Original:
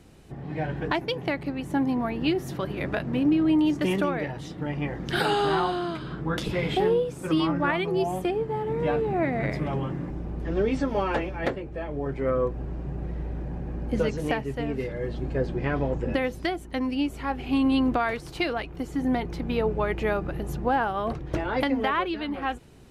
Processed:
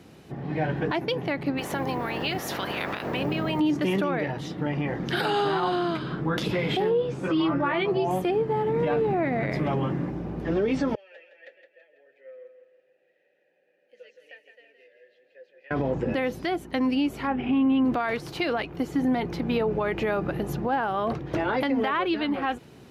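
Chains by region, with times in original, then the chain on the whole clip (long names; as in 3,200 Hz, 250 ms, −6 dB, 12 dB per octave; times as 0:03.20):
0:01.57–0:03.59: ceiling on every frequency bin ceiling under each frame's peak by 21 dB + downward compressor 3 to 1, threshold −30 dBFS + bit-depth reduction 10 bits, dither none
0:06.90–0:08.11: high-frequency loss of the air 89 metres + double-tracking delay 15 ms −3 dB
0:10.95–0:15.71: formant filter e + first difference + repeating echo 165 ms, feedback 44%, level −8 dB
0:17.27–0:17.85: Savitzky-Golay smoothing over 25 samples + parametric band 230 Hz +9 dB 0.3 octaves
whole clip: high-pass filter 120 Hz 12 dB per octave; parametric band 8,500 Hz −7 dB 0.66 octaves; brickwall limiter −21.5 dBFS; level +4.5 dB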